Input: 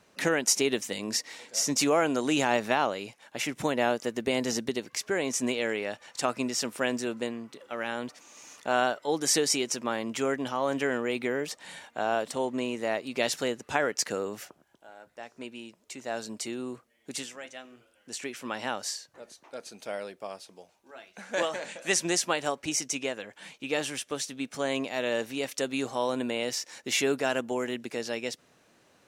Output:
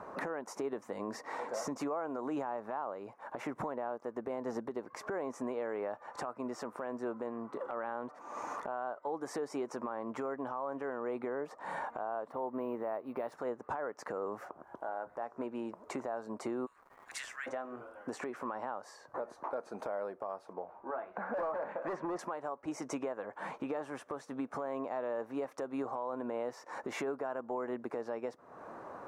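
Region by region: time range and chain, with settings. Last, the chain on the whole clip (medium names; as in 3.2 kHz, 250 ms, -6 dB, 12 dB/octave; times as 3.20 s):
12.30–13.32 s: low-pass 4.2 kHz + careless resampling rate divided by 3×, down none, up hold
16.65–17.46 s: steep high-pass 1.7 kHz + crackle 380 per s -53 dBFS
20.53–22.19 s: low-pass 2.3 kHz + hard clipper -31.5 dBFS
whole clip: FFT filter 160 Hz 0 dB, 1.1 kHz +14 dB, 3 kHz -17 dB; compression 5:1, threshold -44 dBFS; peak limiter -36 dBFS; trim +8.5 dB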